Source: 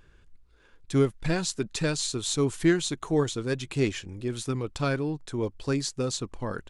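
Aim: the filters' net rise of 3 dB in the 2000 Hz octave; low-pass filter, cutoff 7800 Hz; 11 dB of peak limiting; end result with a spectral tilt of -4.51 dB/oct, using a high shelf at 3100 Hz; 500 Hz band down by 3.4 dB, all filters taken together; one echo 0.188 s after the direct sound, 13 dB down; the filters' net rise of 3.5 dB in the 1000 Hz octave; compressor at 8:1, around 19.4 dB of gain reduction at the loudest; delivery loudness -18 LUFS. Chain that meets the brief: LPF 7800 Hz; bell 500 Hz -5.5 dB; bell 1000 Hz +5.5 dB; bell 2000 Hz +4.5 dB; high shelf 3100 Hz -7 dB; compressor 8:1, threshold -39 dBFS; limiter -38.5 dBFS; echo 0.188 s -13 dB; gain +29.5 dB

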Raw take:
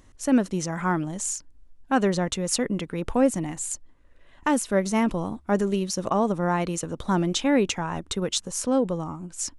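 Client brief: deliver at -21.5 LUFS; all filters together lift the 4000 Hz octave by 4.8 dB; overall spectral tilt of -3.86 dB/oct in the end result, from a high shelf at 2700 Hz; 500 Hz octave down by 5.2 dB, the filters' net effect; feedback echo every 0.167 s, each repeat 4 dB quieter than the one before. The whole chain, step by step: bell 500 Hz -6.5 dB; high shelf 2700 Hz -3 dB; bell 4000 Hz +8.5 dB; feedback echo 0.167 s, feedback 63%, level -4 dB; gain +3.5 dB

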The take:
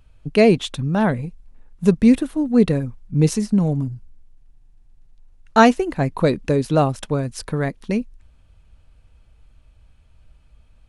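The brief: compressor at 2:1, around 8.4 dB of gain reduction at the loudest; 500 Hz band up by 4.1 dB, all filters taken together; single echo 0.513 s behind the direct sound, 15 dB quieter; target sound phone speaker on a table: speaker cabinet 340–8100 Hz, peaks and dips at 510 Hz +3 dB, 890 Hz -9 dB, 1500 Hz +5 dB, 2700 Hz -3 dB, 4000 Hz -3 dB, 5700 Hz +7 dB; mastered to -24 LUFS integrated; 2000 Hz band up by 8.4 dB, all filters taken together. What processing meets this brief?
bell 500 Hz +4 dB; bell 2000 Hz +8 dB; compressor 2:1, threshold -21 dBFS; speaker cabinet 340–8100 Hz, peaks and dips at 510 Hz +3 dB, 890 Hz -9 dB, 1500 Hz +5 dB, 2700 Hz -3 dB, 4000 Hz -3 dB, 5700 Hz +7 dB; echo 0.513 s -15 dB; gain +1.5 dB

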